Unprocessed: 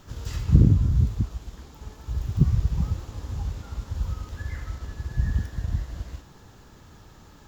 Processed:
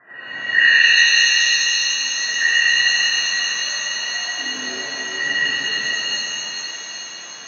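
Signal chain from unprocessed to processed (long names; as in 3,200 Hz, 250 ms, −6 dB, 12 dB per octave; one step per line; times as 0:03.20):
frequency inversion band by band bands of 2,000 Hz
elliptic band-pass filter 120–1,600 Hz, stop band 40 dB
reverb with rising layers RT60 3.3 s, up +7 semitones, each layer −2 dB, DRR −10 dB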